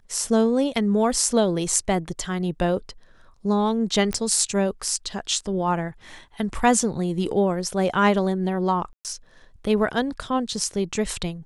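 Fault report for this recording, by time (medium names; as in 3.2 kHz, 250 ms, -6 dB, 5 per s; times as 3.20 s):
4.13 s: pop -13 dBFS
8.93–9.05 s: dropout 118 ms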